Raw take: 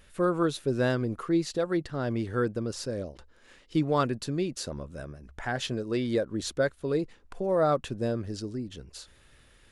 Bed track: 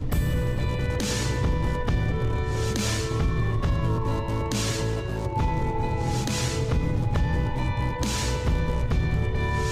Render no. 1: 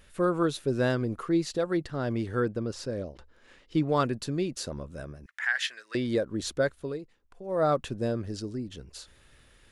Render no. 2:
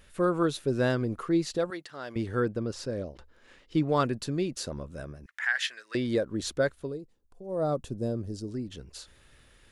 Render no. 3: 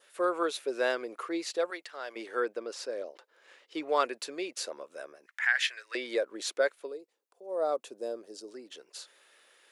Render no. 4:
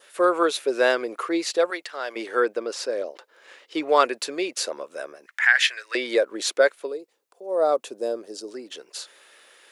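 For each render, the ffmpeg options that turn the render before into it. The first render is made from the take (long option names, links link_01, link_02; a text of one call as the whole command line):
ffmpeg -i in.wav -filter_complex "[0:a]asettb=1/sr,asplit=3[link_01][link_02][link_03];[link_01]atrim=end=2.404[link_04];[link_02]atrim=start=2.4:end=3.89,asetpts=PTS-STARTPTS,afade=type=in:duration=0.004:curve=qsin,afade=type=out:start_time=1.486:duration=0.004:curve=qsin,highshelf=frequency=7300:gain=-10[link_05];[link_03]atrim=start=3.886[link_06];[link_04][link_05]acrossfade=duration=0.004:curve1=hsin:curve2=qsin[link_07];[link_07][link_06]acrossfade=duration=0.004:curve1=qsin:curve2=hsin,asettb=1/sr,asplit=3[link_08][link_09][link_10];[link_08]atrim=end=5.264[link_11];[link_09]atrim=start=5.26:end=5.95,asetpts=PTS-STARTPTS,afade=type=in:duration=0.004:curve=qsin,afade=type=out:start_time=0.686:duration=0.004:curve=qsin,highpass=frequency=1800:width_type=q:width=4[link_12];[link_10]atrim=start=5.946[link_13];[link_11][link_12]acrossfade=duration=0.004:curve1=hsin:curve2=qsin[link_14];[link_14][link_13]acrossfade=duration=0.004:curve1=qsin:curve2=hsin,asplit=3[link_15][link_16][link_17];[link_15]atrim=end=6.99,asetpts=PTS-STARTPTS,afade=type=out:start_time=6.78:duration=0.21:silence=0.251189[link_18];[link_16]atrim=start=6.99:end=7.44,asetpts=PTS-STARTPTS,volume=-12dB[link_19];[link_17]atrim=start=7.44,asetpts=PTS-STARTPTS,afade=type=in:duration=0.21:silence=0.251189[link_20];[link_18][link_19][link_20]concat=n=3:v=0:a=1" out.wav
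ffmpeg -i in.wav -filter_complex "[0:a]asettb=1/sr,asplit=3[link_01][link_02][link_03];[link_01]atrim=end=1.704[link_04];[link_02]atrim=start=1.7:end=2.16,asetpts=PTS-STARTPTS,afade=type=in:duration=0.004:curve=qsin,afade=type=out:start_time=0.456:duration=0.004:curve=qsin,highpass=frequency=1300:poles=1[link_05];[link_03]atrim=start=2.156[link_06];[link_04][link_05]acrossfade=duration=0.004:curve1=hsin:curve2=qsin[link_07];[link_07][link_06]acrossfade=duration=0.004:curve1=qsin:curve2=hsin,asplit=3[link_08][link_09][link_10];[link_08]afade=type=out:start_time=6.86:duration=0.02[link_11];[link_09]equalizer=frequency=2000:width=0.63:gain=-14.5,afade=type=in:start_time=6.86:duration=0.02,afade=type=out:start_time=8.47:duration=0.02[link_12];[link_10]afade=type=in:start_time=8.47:duration=0.02[link_13];[link_11][link_12][link_13]amix=inputs=3:normalize=0" out.wav
ffmpeg -i in.wav -af "highpass=frequency=420:width=0.5412,highpass=frequency=420:width=1.3066,adynamicequalizer=threshold=0.00251:dfrequency=2300:dqfactor=3.3:tfrequency=2300:tqfactor=3.3:attack=5:release=100:ratio=0.375:range=3:mode=boostabove:tftype=bell" out.wav
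ffmpeg -i in.wav -af "volume=9dB" out.wav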